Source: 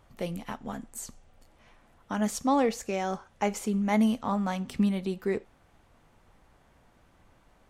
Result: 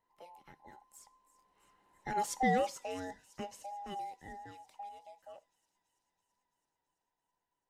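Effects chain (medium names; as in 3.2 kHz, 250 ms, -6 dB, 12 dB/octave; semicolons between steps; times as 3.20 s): every band turned upside down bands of 1 kHz; Doppler pass-by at 2.39 s, 7 m/s, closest 2.3 m; feedback echo behind a high-pass 332 ms, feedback 72%, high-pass 4.8 kHz, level -16 dB; trim -4.5 dB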